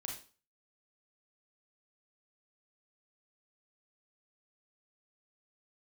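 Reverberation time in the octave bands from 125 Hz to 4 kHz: 0.40 s, 0.40 s, 0.40 s, 0.40 s, 0.35 s, 0.35 s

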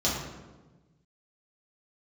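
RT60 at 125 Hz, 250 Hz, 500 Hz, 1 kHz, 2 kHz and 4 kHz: 1.9 s, 1.6 s, 1.3 s, 1.1 s, 0.90 s, 0.75 s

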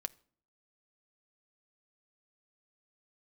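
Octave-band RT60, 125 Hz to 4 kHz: 0.65 s, 0.70 s, 0.55 s, 0.50 s, 0.45 s, 0.40 s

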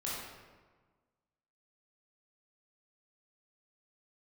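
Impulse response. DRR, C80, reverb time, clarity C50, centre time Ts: -7.0 dB, 1.5 dB, 1.4 s, -1.5 dB, 90 ms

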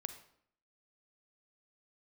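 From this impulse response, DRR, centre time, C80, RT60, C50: 9.0 dB, 10 ms, 13.0 dB, 0.65 s, 10.5 dB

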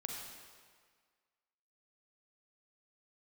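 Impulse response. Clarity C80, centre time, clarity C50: 2.5 dB, 78 ms, 1.0 dB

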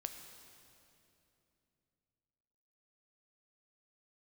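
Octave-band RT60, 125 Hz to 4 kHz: 3.9 s, 3.6 s, 3.2 s, 2.6 s, 2.5 s, 2.4 s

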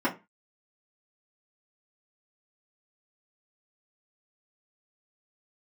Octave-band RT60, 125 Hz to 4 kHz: 0.30 s, 0.30 s, 0.25 s, 0.25 s, 0.25 s, 0.20 s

